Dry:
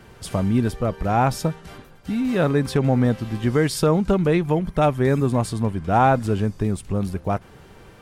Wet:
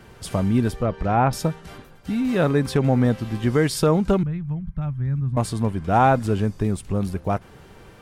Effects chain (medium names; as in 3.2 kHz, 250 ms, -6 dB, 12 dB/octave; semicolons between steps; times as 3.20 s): 0.75–1.33 s: low-pass that closes with the level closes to 2.6 kHz, closed at -16 dBFS; 4.23–5.37 s: FFT filter 140 Hz 0 dB, 410 Hz -27 dB, 1.4 kHz -16 dB, 8.2 kHz -29 dB